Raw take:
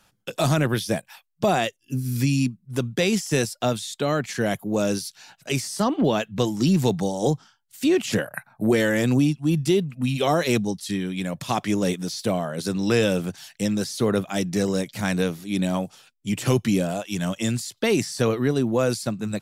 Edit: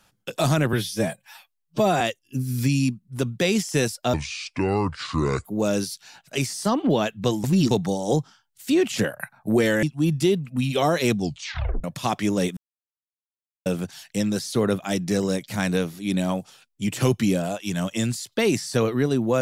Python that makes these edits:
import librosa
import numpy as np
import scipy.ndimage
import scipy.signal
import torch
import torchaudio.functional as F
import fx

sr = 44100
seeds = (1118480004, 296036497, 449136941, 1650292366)

y = fx.edit(x, sr, fx.stretch_span(start_s=0.73, length_s=0.85, factor=1.5),
    fx.speed_span(start_s=3.71, length_s=0.88, speed=0.67),
    fx.reverse_span(start_s=6.58, length_s=0.27),
    fx.cut(start_s=8.97, length_s=0.31),
    fx.tape_stop(start_s=10.62, length_s=0.67),
    fx.silence(start_s=12.02, length_s=1.09), tone=tone)